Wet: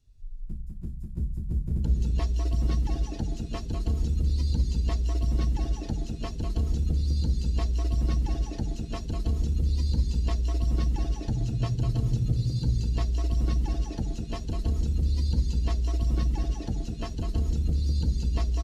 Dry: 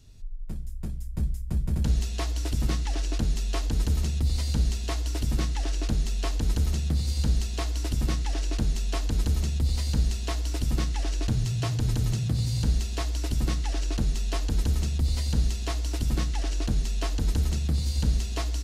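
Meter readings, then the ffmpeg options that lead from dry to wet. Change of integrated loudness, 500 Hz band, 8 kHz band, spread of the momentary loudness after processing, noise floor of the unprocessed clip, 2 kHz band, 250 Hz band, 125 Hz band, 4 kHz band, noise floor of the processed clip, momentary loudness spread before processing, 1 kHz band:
-0.5 dB, -1.5 dB, -10.0 dB, 7 LU, -32 dBFS, -8.5 dB, -0.5 dB, 0.0 dB, -7.5 dB, -37 dBFS, 4 LU, -3.0 dB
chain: -af "aecho=1:1:200|320|392|435.2|461.1:0.631|0.398|0.251|0.158|0.1,afftdn=nr=14:nf=-35,volume=-2.5dB"

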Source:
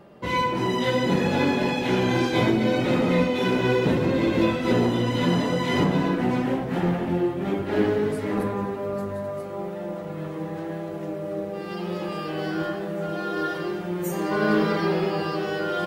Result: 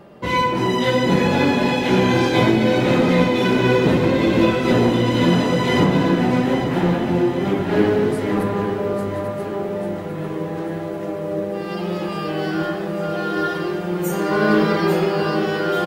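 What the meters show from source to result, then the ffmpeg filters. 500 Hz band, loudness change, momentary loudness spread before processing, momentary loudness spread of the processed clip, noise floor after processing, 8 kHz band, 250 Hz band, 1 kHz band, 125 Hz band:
+5.5 dB, +5.5 dB, 10 LU, 9 LU, -27 dBFS, +5.5 dB, +5.5 dB, +5.5 dB, +5.5 dB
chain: -af "aecho=1:1:843|1686|2529|3372|4215|5058:0.316|0.177|0.0992|0.0555|0.0311|0.0174,volume=5dB"

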